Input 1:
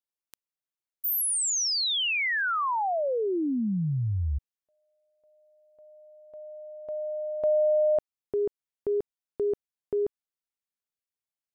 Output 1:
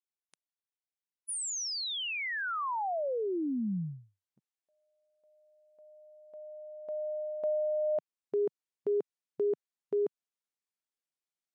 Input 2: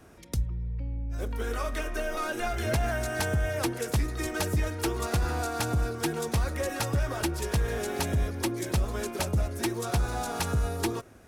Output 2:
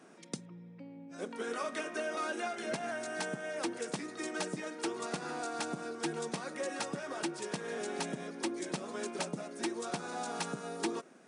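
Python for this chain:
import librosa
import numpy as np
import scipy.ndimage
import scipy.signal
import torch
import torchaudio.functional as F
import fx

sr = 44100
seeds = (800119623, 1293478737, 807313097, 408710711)

y = fx.rider(x, sr, range_db=3, speed_s=0.5)
y = fx.brickwall_bandpass(y, sr, low_hz=150.0, high_hz=10000.0)
y = y * 10.0 ** (-5.5 / 20.0)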